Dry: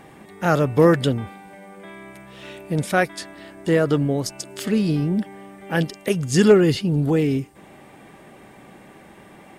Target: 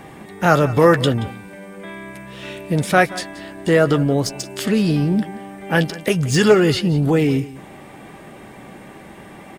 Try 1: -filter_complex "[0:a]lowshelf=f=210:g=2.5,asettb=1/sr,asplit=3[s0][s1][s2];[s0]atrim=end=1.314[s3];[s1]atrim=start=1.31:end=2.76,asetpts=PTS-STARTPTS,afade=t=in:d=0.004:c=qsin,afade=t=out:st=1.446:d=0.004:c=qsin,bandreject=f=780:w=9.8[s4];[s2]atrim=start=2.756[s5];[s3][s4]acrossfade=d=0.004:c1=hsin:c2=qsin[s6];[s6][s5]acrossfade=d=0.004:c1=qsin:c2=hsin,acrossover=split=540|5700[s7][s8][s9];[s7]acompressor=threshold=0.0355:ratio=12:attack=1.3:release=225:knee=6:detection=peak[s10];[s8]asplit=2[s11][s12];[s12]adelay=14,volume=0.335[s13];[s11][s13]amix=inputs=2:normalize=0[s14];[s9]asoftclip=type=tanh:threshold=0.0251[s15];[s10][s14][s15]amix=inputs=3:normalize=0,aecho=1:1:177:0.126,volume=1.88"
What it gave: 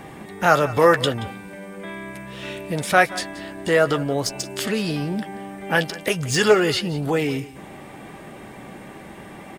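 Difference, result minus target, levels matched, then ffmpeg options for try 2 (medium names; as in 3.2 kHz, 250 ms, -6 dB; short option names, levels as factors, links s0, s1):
compression: peak gain reduction +9.5 dB
-filter_complex "[0:a]lowshelf=f=210:g=2.5,asettb=1/sr,asplit=3[s0][s1][s2];[s0]atrim=end=1.314[s3];[s1]atrim=start=1.31:end=2.76,asetpts=PTS-STARTPTS,afade=t=in:d=0.004:c=qsin,afade=t=out:st=1.446:d=0.004:c=qsin,bandreject=f=780:w=9.8[s4];[s2]atrim=start=2.756[s5];[s3][s4]acrossfade=d=0.004:c1=hsin:c2=qsin[s6];[s6][s5]acrossfade=d=0.004:c1=qsin:c2=hsin,acrossover=split=540|5700[s7][s8][s9];[s7]acompressor=threshold=0.119:ratio=12:attack=1.3:release=225:knee=6:detection=peak[s10];[s8]asplit=2[s11][s12];[s12]adelay=14,volume=0.335[s13];[s11][s13]amix=inputs=2:normalize=0[s14];[s9]asoftclip=type=tanh:threshold=0.0251[s15];[s10][s14][s15]amix=inputs=3:normalize=0,aecho=1:1:177:0.126,volume=1.88"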